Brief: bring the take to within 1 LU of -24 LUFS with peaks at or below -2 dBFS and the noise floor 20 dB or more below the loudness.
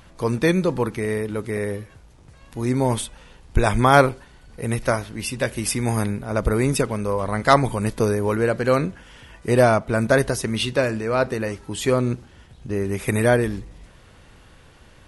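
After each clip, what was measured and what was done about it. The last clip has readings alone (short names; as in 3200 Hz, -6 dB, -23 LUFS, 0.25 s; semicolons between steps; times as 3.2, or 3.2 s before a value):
dropouts 1; longest dropout 2.0 ms; loudness -21.5 LUFS; peak -1.5 dBFS; loudness target -24.0 LUFS
-> interpolate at 1.57, 2 ms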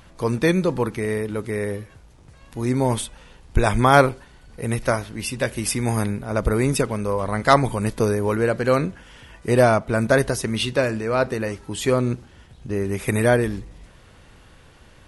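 dropouts 0; loudness -21.5 LUFS; peak -1.5 dBFS; loudness target -24.0 LUFS
-> gain -2.5 dB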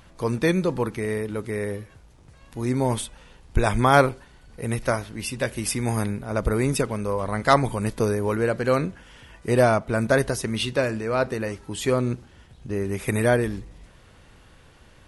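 loudness -24.0 LUFS; peak -4.0 dBFS; noise floor -52 dBFS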